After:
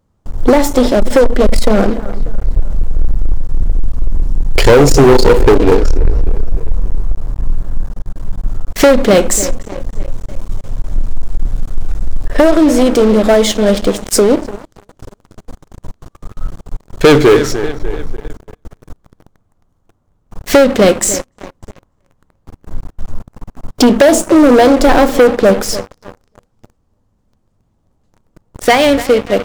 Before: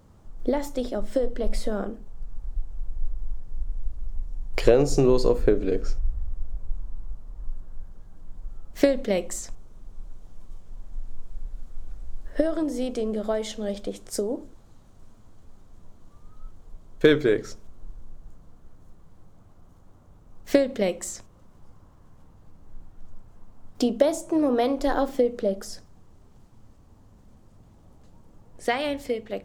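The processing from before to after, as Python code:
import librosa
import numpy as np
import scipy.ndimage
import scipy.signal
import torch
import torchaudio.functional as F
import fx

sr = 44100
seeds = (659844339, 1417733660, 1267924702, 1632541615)

p1 = x + fx.echo_wet_lowpass(x, sr, ms=296, feedback_pct=47, hz=3400.0, wet_db=-18, dry=0)
p2 = fx.leveller(p1, sr, passes=5)
y = F.gain(torch.from_numpy(p2), 2.0).numpy()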